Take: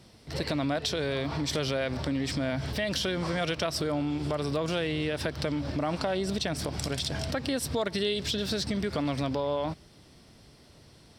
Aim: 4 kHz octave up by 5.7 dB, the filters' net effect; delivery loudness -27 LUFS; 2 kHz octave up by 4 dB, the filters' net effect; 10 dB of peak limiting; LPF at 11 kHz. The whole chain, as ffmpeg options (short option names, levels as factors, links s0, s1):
-af "lowpass=11000,equalizer=f=2000:t=o:g=3.5,equalizer=f=4000:t=o:g=6,volume=1.5,alimiter=limit=0.15:level=0:latency=1"